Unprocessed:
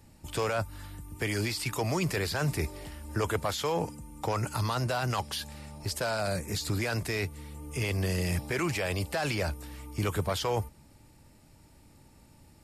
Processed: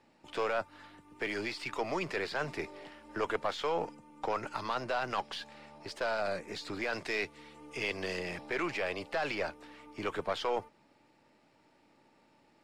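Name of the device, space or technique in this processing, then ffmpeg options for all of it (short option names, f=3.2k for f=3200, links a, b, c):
crystal radio: -filter_complex "[0:a]asettb=1/sr,asplit=3[a][b][c];[a]atrim=end=6.934[d];[b]atrim=start=6.93:end=8.19,asetpts=PTS-STARTPTS,afade=t=in:d=0.004:c=qsin,afade=t=out:st=1.256:d=0.004:c=qsin,equalizer=f=5.6k:t=o:w=2.5:g=5.5[e];[c]atrim=start=8.186[f];[d][e]acrossfade=d=0.004:c1=hsin:c2=qsin[g];[g][f]acrossfade=d=0.004:c1=qsin:c2=hsin,highpass=330,lowpass=3.4k,aeval=exprs='if(lt(val(0),0),0.708*val(0),val(0))':c=same"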